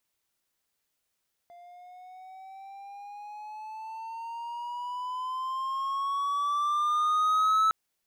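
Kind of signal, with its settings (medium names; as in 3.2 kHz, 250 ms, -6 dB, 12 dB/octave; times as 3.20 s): gliding synth tone triangle, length 6.21 s, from 694 Hz, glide +11 st, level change +27.5 dB, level -18 dB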